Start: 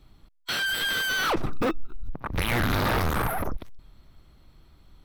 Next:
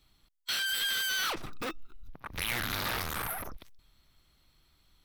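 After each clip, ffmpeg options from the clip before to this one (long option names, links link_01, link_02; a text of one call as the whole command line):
ffmpeg -i in.wav -af "tiltshelf=frequency=1500:gain=-7.5,volume=-7dB" out.wav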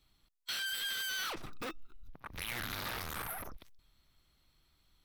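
ffmpeg -i in.wav -af "alimiter=level_in=1dB:limit=-24dB:level=0:latency=1:release=75,volume=-1dB,volume=-4.5dB" out.wav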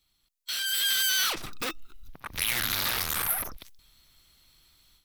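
ffmpeg -i in.wav -af "highshelf=frequency=2400:gain=11.5,dynaudnorm=framelen=450:gausssize=3:maxgain=12dB,volume=-7dB" out.wav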